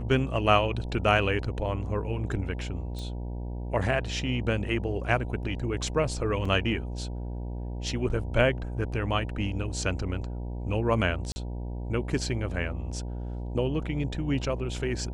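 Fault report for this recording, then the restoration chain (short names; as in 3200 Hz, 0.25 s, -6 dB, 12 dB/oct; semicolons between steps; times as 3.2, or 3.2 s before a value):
buzz 60 Hz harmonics 16 -34 dBFS
2.99 pop -26 dBFS
6.45 gap 3.9 ms
11.32–11.36 gap 40 ms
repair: de-click; de-hum 60 Hz, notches 16; interpolate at 6.45, 3.9 ms; interpolate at 11.32, 40 ms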